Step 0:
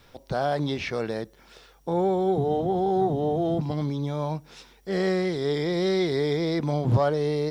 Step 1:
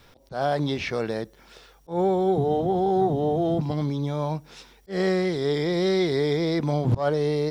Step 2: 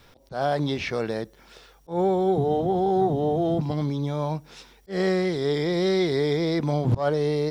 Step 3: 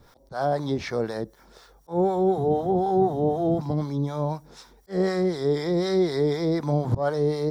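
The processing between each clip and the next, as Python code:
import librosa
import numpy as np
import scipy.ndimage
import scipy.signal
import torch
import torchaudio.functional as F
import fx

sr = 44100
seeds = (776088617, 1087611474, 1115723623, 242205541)

y1 = fx.auto_swell(x, sr, attack_ms=136.0)
y1 = F.gain(torch.from_numpy(y1), 1.5).numpy()
y2 = y1
y3 = fx.peak_eq(y2, sr, hz=960.0, db=2.0, octaves=0.77)
y3 = fx.harmonic_tremolo(y3, sr, hz=4.0, depth_pct=70, crossover_hz=710.0)
y3 = fx.peak_eq(y3, sr, hz=2700.0, db=-12.0, octaves=0.71)
y3 = F.gain(torch.from_numpy(y3), 3.0).numpy()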